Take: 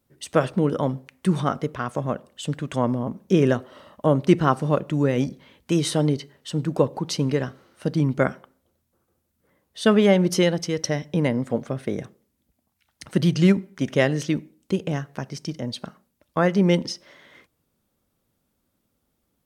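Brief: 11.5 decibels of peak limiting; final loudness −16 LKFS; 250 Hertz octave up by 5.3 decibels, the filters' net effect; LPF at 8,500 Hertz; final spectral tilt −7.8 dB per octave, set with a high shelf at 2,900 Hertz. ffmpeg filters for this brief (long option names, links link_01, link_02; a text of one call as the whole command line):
ffmpeg -i in.wav -af "lowpass=8500,equalizer=frequency=250:width_type=o:gain=7.5,highshelf=frequency=2900:gain=-4,volume=8.5dB,alimiter=limit=-4.5dB:level=0:latency=1" out.wav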